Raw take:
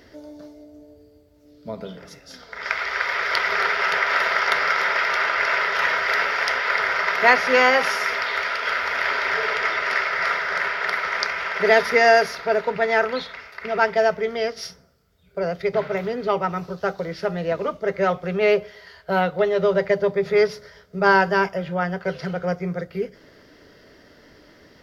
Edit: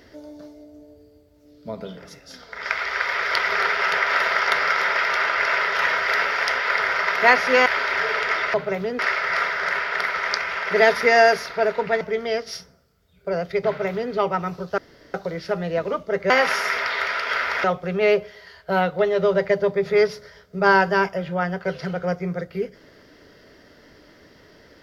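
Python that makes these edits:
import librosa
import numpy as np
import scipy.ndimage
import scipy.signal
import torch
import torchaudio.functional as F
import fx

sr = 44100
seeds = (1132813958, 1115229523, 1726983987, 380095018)

y = fx.edit(x, sr, fx.move(start_s=7.66, length_s=1.34, to_s=18.04),
    fx.cut(start_s=12.9, length_s=1.21),
    fx.duplicate(start_s=15.77, length_s=0.45, to_s=9.88),
    fx.insert_room_tone(at_s=16.88, length_s=0.36), tone=tone)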